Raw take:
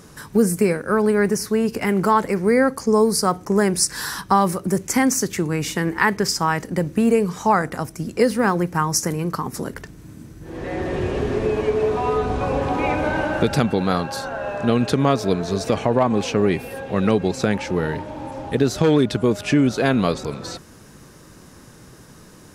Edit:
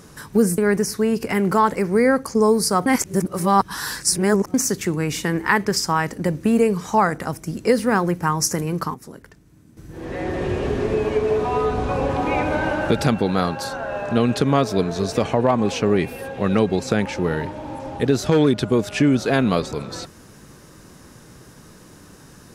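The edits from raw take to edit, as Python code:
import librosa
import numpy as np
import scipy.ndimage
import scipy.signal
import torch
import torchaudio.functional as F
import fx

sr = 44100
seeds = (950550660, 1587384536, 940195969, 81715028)

y = fx.edit(x, sr, fx.cut(start_s=0.58, length_s=0.52),
    fx.reverse_span(start_s=3.38, length_s=1.68),
    fx.clip_gain(start_s=9.46, length_s=0.83, db=-11.5), tone=tone)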